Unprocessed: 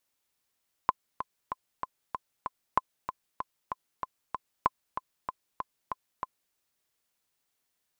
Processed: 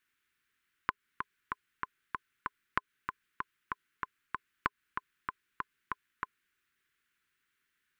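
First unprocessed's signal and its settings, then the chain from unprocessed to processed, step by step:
metronome 191 bpm, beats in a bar 6, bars 3, 1.03 kHz, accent 10 dB -9 dBFS
FFT filter 410 Hz 0 dB, 630 Hz -23 dB, 1.5 kHz +12 dB, 2.9 kHz +4 dB, 5 kHz -6 dB; compression, threshold -27 dBFS

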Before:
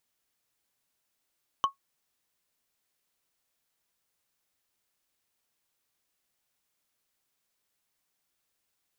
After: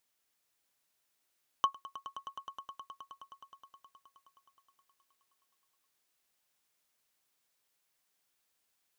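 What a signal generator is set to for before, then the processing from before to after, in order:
wood hit, lowest mode 1.1 kHz, decay 0.12 s, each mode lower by 9 dB, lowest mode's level -16.5 dB
bass shelf 270 Hz -6 dB; echo with a slow build-up 105 ms, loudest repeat 5, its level -16 dB

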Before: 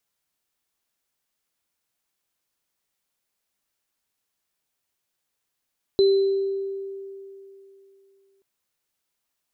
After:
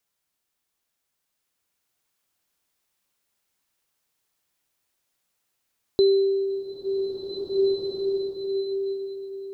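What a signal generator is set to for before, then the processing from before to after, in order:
sine partials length 2.43 s, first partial 391 Hz, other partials 4.04 kHz, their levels -13 dB, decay 2.95 s, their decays 0.91 s, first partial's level -13 dB
swelling reverb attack 1940 ms, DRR -1 dB

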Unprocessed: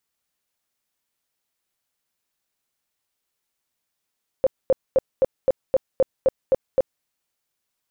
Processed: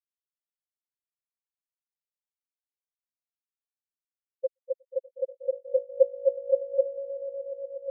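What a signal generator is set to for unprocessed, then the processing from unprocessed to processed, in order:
tone bursts 528 Hz, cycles 14, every 0.26 s, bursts 10, -12.5 dBFS
bass shelf 110 Hz +11.5 dB; echo with a slow build-up 121 ms, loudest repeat 8, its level -4.5 dB; spectral contrast expander 4:1

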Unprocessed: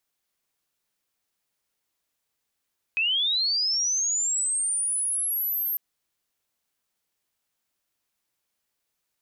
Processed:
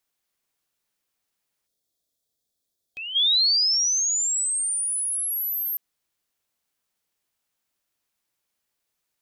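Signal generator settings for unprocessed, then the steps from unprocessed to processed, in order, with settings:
sweep linear 2.5 kHz -> 13 kHz -21 dBFS -> -24.5 dBFS 2.80 s
dynamic bell 4.1 kHz, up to +5 dB, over -36 dBFS, Q 1.1; time-frequency box 1.67–4.02 s, 750–3200 Hz -12 dB

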